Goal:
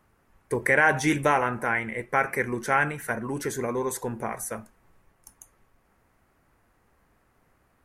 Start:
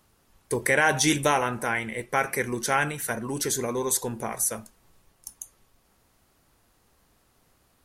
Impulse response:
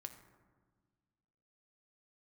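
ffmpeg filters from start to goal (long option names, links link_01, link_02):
-af "highshelf=frequency=2700:width_type=q:width=1.5:gain=-9"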